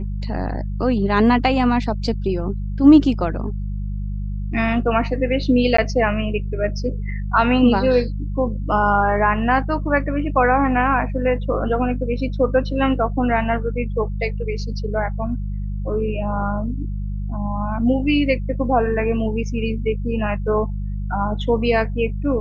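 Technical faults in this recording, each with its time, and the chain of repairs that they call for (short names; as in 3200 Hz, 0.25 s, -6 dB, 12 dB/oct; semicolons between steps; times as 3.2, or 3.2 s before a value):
hum 50 Hz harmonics 4 -25 dBFS
5.77–5.78 gap 14 ms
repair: de-hum 50 Hz, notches 4; interpolate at 5.77, 14 ms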